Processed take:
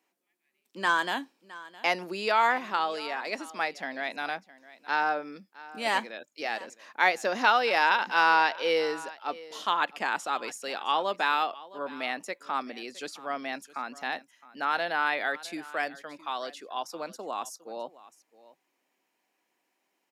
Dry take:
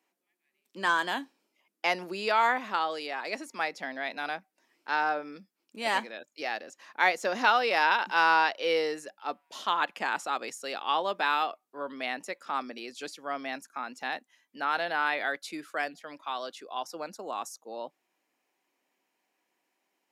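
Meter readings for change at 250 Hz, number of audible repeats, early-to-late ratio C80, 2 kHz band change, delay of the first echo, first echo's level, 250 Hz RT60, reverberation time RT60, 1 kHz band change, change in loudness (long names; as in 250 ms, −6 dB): +1.0 dB, 1, no reverb audible, +1.0 dB, 663 ms, −19.0 dB, no reverb audible, no reverb audible, +1.0 dB, +1.0 dB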